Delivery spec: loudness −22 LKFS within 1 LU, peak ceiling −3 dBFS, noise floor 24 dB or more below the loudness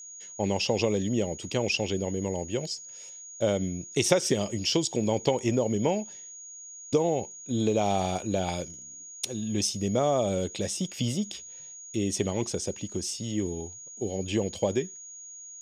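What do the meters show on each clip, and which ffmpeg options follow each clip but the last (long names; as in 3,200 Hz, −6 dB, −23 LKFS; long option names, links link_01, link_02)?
interfering tone 6,700 Hz; level of the tone −42 dBFS; integrated loudness −28.5 LKFS; sample peak −7.5 dBFS; target loudness −22.0 LKFS
→ -af "bandreject=frequency=6700:width=30"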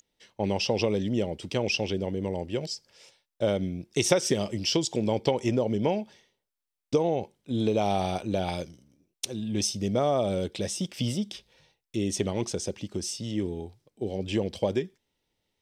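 interfering tone none found; integrated loudness −29.0 LKFS; sample peak −8.0 dBFS; target loudness −22.0 LKFS
→ -af "volume=7dB,alimiter=limit=-3dB:level=0:latency=1"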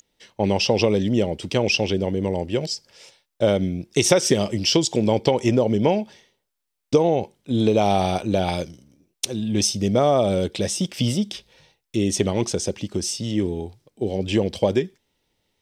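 integrated loudness −22.0 LKFS; sample peak −3.0 dBFS; background noise floor −79 dBFS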